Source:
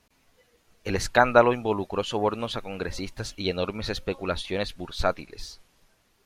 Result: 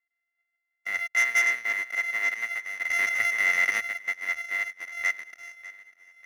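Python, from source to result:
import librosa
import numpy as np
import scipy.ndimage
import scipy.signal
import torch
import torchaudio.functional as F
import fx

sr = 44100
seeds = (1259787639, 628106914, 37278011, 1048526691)

y = np.r_[np.sort(x[:len(x) // 64 * 64].reshape(-1, 64), axis=1).ravel(), x[len(x) // 64 * 64:]]
y = fx.bandpass_q(y, sr, hz=2000.0, q=17.0)
y = fx.leveller(y, sr, passes=3)
y = fx.echo_feedback(y, sr, ms=597, feedback_pct=51, wet_db=-17)
y = fx.env_flatten(y, sr, amount_pct=70, at=(2.89, 3.79), fade=0.02)
y = F.gain(torch.from_numpy(y), 4.0).numpy()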